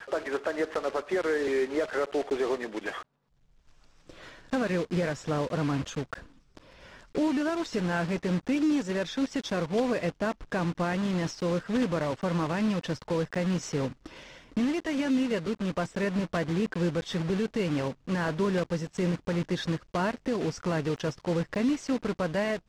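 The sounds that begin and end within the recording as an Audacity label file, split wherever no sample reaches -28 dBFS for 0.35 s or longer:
4.530000	6.130000	sound
7.170000	13.880000	sound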